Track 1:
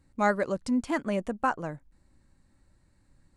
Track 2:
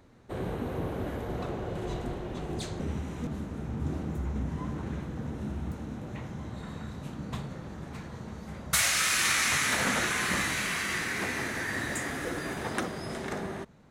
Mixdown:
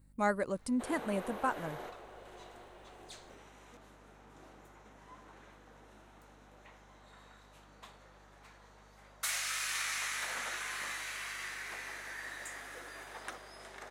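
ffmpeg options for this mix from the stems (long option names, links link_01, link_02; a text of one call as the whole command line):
ffmpeg -i stem1.wav -i stem2.wav -filter_complex "[0:a]aexciter=amount=4.9:drive=3.9:freq=8600,volume=-6dB,asplit=2[link_01][link_02];[1:a]highpass=640,adelay=500,volume=-2dB[link_03];[link_02]apad=whole_len=635431[link_04];[link_03][link_04]sidechaingate=range=-8dB:threshold=-58dB:ratio=16:detection=peak[link_05];[link_01][link_05]amix=inputs=2:normalize=0,aeval=exprs='val(0)+0.000794*(sin(2*PI*50*n/s)+sin(2*PI*2*50*n/s)/2+sin(2*PI*3*50*n/s)/3+sin(2*PI*4*50*n/s)/4+sin(2*PI*5*50*n/s)/5)':channel_layout=same" out.wav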